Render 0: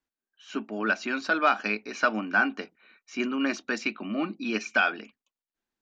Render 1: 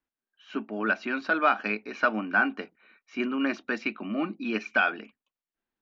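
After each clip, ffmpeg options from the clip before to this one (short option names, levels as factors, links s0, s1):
-af "lowpass=3100"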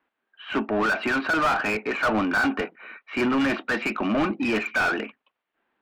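-filter_complex "[0:a]lowpass=f=3400:w=0.5412,lowpass=f=3400:w=1.3066,asplit=2[s0][s1];[s1]highpass=f=720:p=1,volume=31.6,asoftclip=type=tanh:threshold=0.282[s2];[s0][s2]amix=inputs=2:normalize=0,lowpass=f=1500:p=1,volume=0.501,volume=0.75"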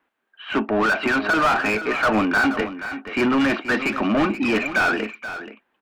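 -af "aecho=1:1:479:0.251,volume=1.5"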